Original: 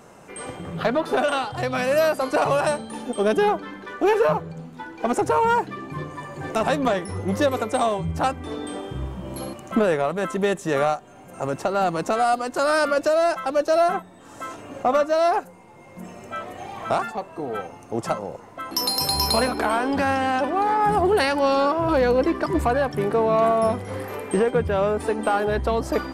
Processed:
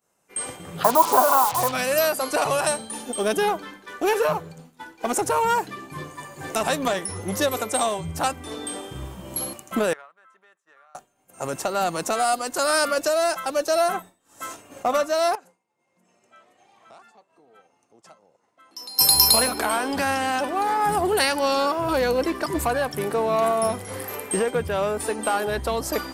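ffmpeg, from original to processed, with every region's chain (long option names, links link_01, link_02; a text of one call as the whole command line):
ffmpeg -i in.wav -filter_complex "[0:a]asettb=1/sr,asplit=3[link_01][link_02][link_03];[link_01]atrim=end=0.844[link_04];[link_02]atrim=start=0.84:end=1.72,asetpts=PTS-STARTPTS,afade=type=in:duration=0.004:curve=qsin,afade=type=out:start_time=0.876:duration=0.004:curve=qsin,lowpass=frequency=1000:width_type=q:width=8.4,acrusher=bits=4:mix=0:aa=0.5[link_05];[link_03]atrim=start=1.716[link_06];[link_04][link_05]acrossfade=duration=0.004:curve1=hsin:curve2=qsin[link_07];[link_07][link_06]acrossfade=duration=0.004:curve1=qsin:curve2=hsin,asettb=1/sr,asplit=3[link_08][link_09][link_10];[link_08]atrim=end=9.934[link_11];[link_09]atrim=start=9.93:end=10.95,asetpts=PTS-STARTPTS,afade=type=in:duration=0.004:curve=qsin,afade=type=out:start_time=1.016:duration=0.004:curve=qsin,bandpass=frequency=1400:width_type=q:width=2.3,acompressor=threshold=-38dB:ratio=8:attack=3.2:release=140:knee=1:detection=peak[link_12];[link_10]atrim=start=10.946[link_13];[link_11][link_12]acrossfade=duration=0.004:curve1=hsin:curve2=qsin[link_14];[link_14][link_13]acrossfade=duration=0.004:curve1=qsin:curve2=hsin,asettb=1/sr,asplit=3[link_15][link_16][link_17];[link_15]atrim=end=15.354[link_18];[link_16]atrim=start=15.35:end=18.99,asetpts=PTS-STARTPTS,afade=type=in:duration=0.004:curve=qsin,afade=type=out:start_time=3.636:duration=0.004:curve=qsin,acompressor=threshold=-39dB:ratio=4:attack=3.2:release=140:knee=1:detection=peak,highpass=150,lowpass=6700[link_19];[link_17]atrim=start=18.986[link_20];[link_18][link_19]acrossfade=duration=0.004:curve1=hsin:curve2=qsin[link_21];[link_21][link_20]acrossfade=duration=0.004:curve1=qsin:curve2=hsin,aemphasis=mode=production:type=75kf,agate=range=-33dB:threshold=-31dB:ratio=3:detection=peak,lowshelf=frequency=370:gain=-3.5,volume=-2dB" out.wav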